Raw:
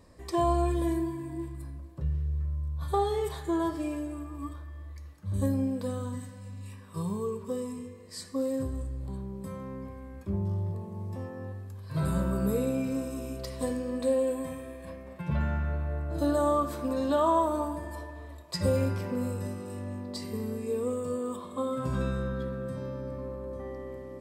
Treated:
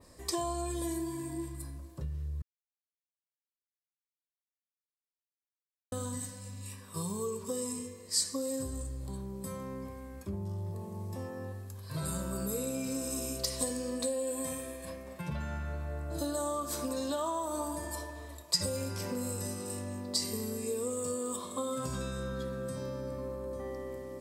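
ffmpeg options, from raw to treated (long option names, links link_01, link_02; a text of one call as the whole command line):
ffmpeg -i in.wav -filter_complex "[0:a]asplit=3[link_01][link_02][link_03];[link_01]atrim=end=2.42,asetpts=PTS-STARTPTS,afade=type=out:start_time=2.416:duration=0.004:curve=hsin[link_04];[link_02]atrim=start=2.42:end=5.92,asetpts=PTS-STARTPTS,volume=0[link_05];[link_03]atrim=start=5.92,asetpts=PTS-STARTPTS,afade=type=in:duration=0.004:curve=hsin[link_06];[link_04][link_05][link_06]concat=n=3:v=0:a=1,adynamicequalizer=threshold=0.00158:dfrequency=6400:dqfactor=0.76:tfrequency=6400:tqfactor=0.76:attack=5:release=100:ratio=0.375:range=3.5:mode=boostabove:tftype=bell,acompressor=threshold=-31dB:ratio=6,bass=frequency=250:gain=-3,treble=frequency=4000:gain=10" out.wav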